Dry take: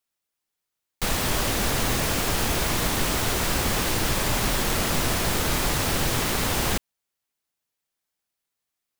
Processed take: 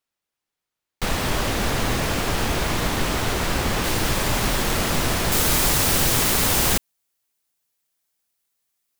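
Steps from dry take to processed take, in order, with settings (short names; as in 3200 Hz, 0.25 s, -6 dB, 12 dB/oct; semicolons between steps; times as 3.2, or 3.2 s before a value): high shelf 5600 Hz -8 dB, from 3.84 s -2.5 dB, from 5.32 s +7.5 dB; gain +2.5 dB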